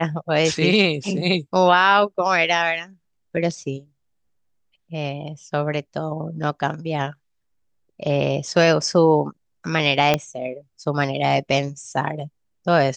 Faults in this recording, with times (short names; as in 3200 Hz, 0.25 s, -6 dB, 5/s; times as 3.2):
10.14 pop -4 dBFS